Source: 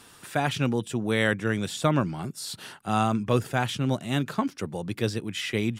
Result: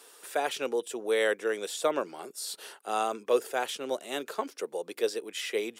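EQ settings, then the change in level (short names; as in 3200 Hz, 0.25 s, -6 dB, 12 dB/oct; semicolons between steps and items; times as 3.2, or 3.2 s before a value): ladder high-pass 390 Hz, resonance 55%; high shelf 5400 Hz +8.5 dB; +4.0 dB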